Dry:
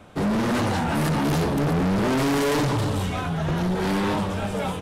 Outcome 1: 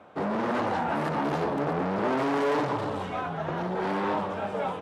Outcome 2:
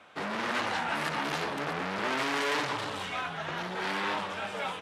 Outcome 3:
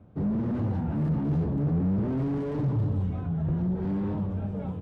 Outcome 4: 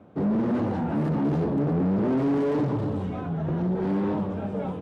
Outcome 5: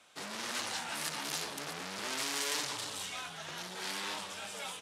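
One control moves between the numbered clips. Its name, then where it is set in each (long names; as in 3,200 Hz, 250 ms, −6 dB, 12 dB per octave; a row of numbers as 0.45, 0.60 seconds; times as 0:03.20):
resonant band-pass, frequency: 790, 2,100, 100, 270, 6,600 Hertz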